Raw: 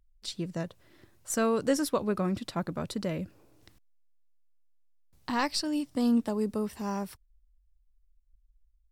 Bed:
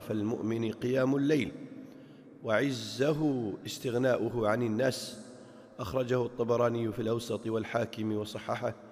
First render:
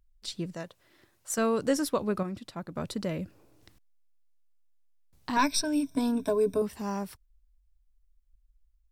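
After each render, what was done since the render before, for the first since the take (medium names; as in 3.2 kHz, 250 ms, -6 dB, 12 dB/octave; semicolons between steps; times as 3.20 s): 0.55–1.38 s: bass shelf 350 Hz -10 dB; 2.23–2.76 s: gain -6.5 dB; 5.36–6.62 s: rippled EQ curve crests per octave 1.6, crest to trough 17 dB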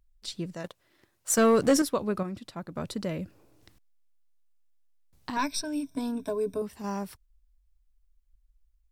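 0.64–1.82 s: waveshaping leveller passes 2; 5.30–6.84 s: gain -4 dB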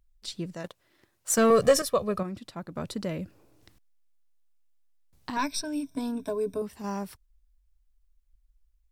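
1.50–2.20 s: comb 1.7 ms, depth 81%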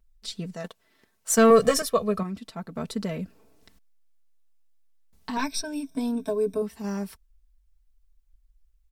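comb 4.5 ms, depth 68%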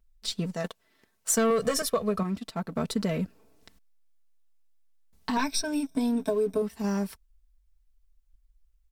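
waveshaping leveller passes 1; compression 5:1, threshold -23 dBFS, peak gain reduction 11 dB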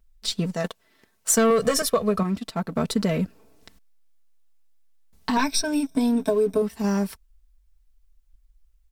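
trim +5 dB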